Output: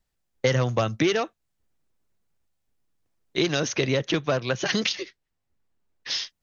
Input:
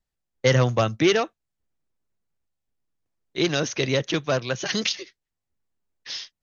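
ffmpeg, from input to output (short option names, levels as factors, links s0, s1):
-filter_complex "[0:a]asettb=1/sr,asplit=3[s0][s1][s2];[s0]atrim=end=3.724[s3];[s1]atrim=start=3.72:end=6.11,asetpts=PTS-STARTPTS,afade=t=in:d=0.004:c=qsin,afade=t=out:st=2.386:d=0.004:c=qsin,highshelf=f=5400:g=-8.5[s4];[s2]atrim=start=6.106[s5];[s3][s4]acrossfade=d=0.004:c1=hsin:c2=qsin[s6];[s6][s5]acrossfade=d=0.004:c1=qsin:c2=hsin,acompressor=threshold=0.0447:ratio=3,volume=1.88"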